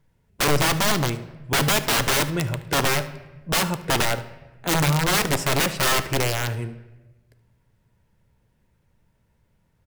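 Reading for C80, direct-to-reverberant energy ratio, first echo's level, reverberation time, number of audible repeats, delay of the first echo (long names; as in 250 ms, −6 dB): 16.5 dB, 10.5 dB, −18.0 dB, 1.2 s, 1, 74 ms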